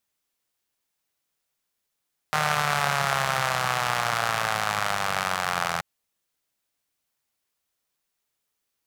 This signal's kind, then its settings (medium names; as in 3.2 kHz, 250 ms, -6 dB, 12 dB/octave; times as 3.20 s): four-cylinder engine model, changing speed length 3.48 s, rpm 4600, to 2500, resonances 150/770/1200 Hz